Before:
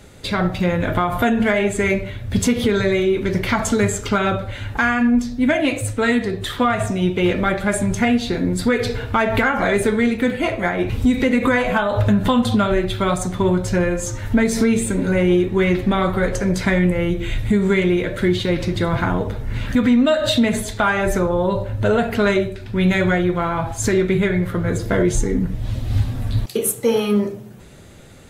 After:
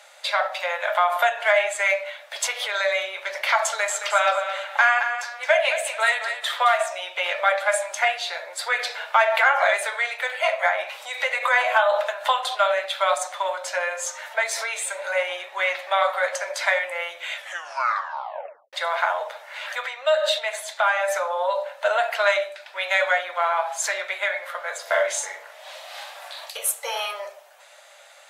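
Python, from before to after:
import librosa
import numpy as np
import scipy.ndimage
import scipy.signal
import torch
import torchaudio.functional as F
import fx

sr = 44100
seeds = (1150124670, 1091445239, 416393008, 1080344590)

y = fx.echo_feedback(x, sr, ms=219, feedback_pct=28, wet_db=-9.0, at=(3.66, 6.78))
y = fx.doubler(y, sr, ms=43.0, db=-3.5, at=(24.82, 26.5))
y = fx.edit(y, sr, fx.tape_stop(start_s=17.33, length_s=1.4),
    fx.clip_gain(start_s=19.86, length_s=1.22, db=-3.5), tone=tone)
y = scipy.signal.sosfilt(scipy.signal.cheby1(6, 1.0, 570.0, 'highpass', fs=sr, output='sos'), y)
y = fx.high_shelf(y, sr, hz=10000.0, db=-7.0)
y = F.gain(torch.from_numpy(y), 2.0).numpy()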